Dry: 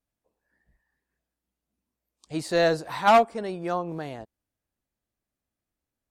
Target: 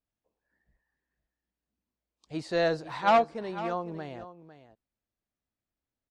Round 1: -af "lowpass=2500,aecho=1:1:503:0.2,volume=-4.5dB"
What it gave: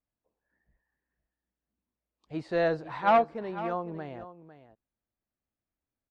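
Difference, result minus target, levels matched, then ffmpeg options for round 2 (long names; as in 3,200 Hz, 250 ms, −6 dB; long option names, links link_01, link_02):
4,000 Hz band −6.0 dB
-af "lowpass=5400,aecho=1:1:503:0.2,volume=-4.5dB"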